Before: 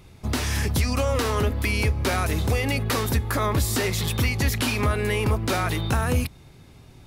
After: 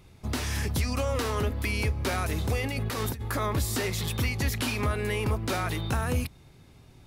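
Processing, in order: 2.64–3.28 s: compressor with a negative ratio -25 dBFS, ratio -0.5; trim -5 dB

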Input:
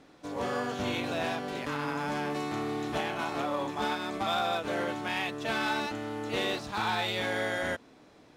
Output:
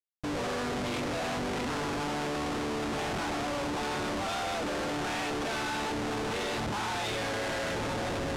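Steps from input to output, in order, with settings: shuffle delay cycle 1017 ms, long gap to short 1.5:1, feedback 65%, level -13 dB; Schmitt trigger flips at -39.5 dBFS; low-pass 7.8 kHz 12 dB/octave

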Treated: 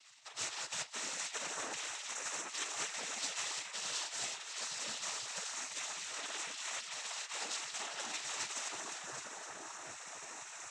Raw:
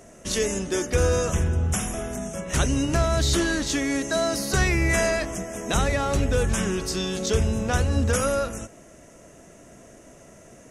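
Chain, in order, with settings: two-band feedback delay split 760 Hz, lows 752 ms, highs 257 ms, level -5.5 dB; reverse; compression 6:1, threshold -30 dBFS, peak gain reduction 13.5 dB; reverse; spectral gate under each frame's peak -25 dB weak; noise-vocoded speech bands 12; trim +7 dB

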